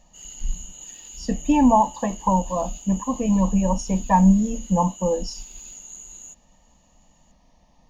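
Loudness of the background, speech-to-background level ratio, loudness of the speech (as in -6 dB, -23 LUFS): -38.5 LUFS, 17.5 dB, -21.0 LUFS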